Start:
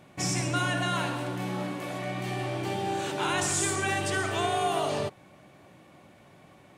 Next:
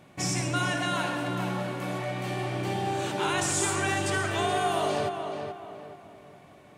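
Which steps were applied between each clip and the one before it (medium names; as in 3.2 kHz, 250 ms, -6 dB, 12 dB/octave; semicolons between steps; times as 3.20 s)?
tape echo 427 ms, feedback 41%, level -5 dB, low-pass 2.3 kHz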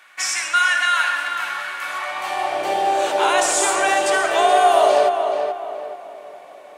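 high-pass sweep 1.5 kHz -> 580 Hz, 1.80–2.72 s; trim +8 dB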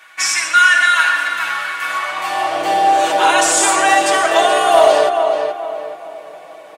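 comb 6.2 ms, depth 85%; hard clipper -5.5 dBFS, distortion -31 dB; trim +3 dB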